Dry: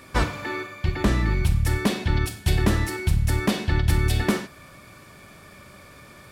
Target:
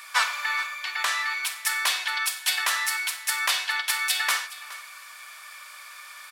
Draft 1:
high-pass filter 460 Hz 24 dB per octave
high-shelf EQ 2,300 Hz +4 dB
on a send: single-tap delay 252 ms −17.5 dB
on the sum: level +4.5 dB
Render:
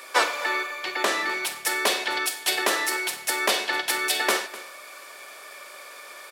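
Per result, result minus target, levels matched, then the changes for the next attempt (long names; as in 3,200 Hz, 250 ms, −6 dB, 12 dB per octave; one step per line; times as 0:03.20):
500 Hz band +18.5 dB; echo 167 ms early
change: high-pass filter 1,000 Hz 24 dB per octave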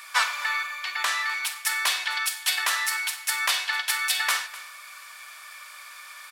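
echo 167 ms early
change: single-tap delay 419 ms −17.5 dB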